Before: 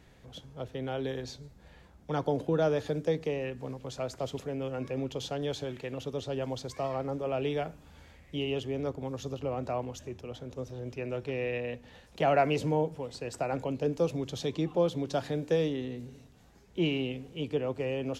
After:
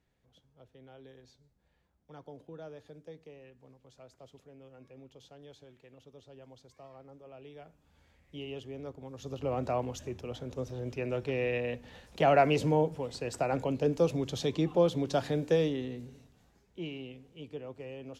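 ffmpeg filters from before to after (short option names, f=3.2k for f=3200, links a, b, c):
-af "volume=1.5dB,afade=t=in:st=7.53:d=0.86:silence=0.316228,afade=t=in:st=9.14:d=0.4:silence=0.298538,afade=t=out:st=15.41:d=1.39:silence=0.237137"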